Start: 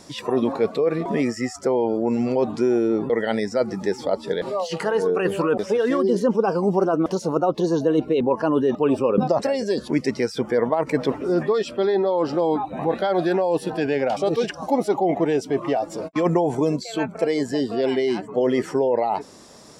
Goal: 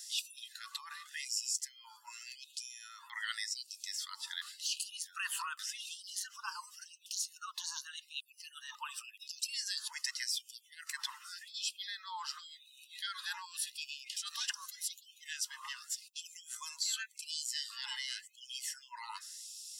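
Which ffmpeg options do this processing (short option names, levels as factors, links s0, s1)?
-af "asuperstop=centerf=2300:order=4:qfactor=5.8,aderivative,afftfilt=real='re*gte(b*sr/1024,820*pow(2500/820,0.5+0.5*sin(2*PI*0.88*pts/sr)))':imag='im*gte(b*sr/1024,820*pow(2500/820,0.5+0.5*sin(2*PI*0.88*pts/sr)))':win_size=1024:overlap=0.75,volume=1.68"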